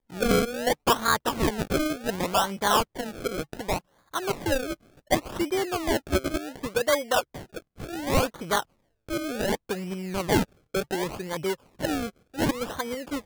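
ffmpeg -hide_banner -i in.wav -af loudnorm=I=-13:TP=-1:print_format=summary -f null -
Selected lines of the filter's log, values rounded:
Input Integrated:    -27.9 LUFS
Input True Peak:      -8.9 dBTP
Input LRA:             3.3 LU
Input Threshold:     -38.1 LUFS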